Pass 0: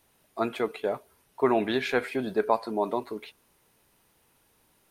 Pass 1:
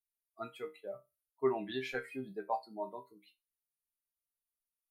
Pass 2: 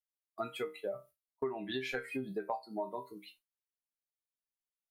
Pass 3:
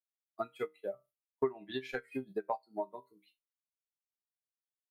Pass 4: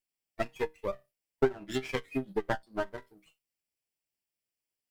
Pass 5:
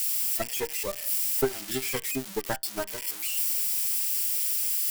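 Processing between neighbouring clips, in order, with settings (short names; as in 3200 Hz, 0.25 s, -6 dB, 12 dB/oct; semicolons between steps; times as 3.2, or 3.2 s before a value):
per-bin expansion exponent 2; resonator bank C3 minor, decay 0.22 s; gain +4 dB
gate with hold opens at -55 dBFS; compressor 8:1, threshold -45 dBFS, peak gain reduction 19.5 dB; gain +11 dB
upward expander 2.5:1, over -45 dBFS; gain +6 dB
minimum comb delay 0.39 ms; gain +6 dB
switching spikes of -22 dBFS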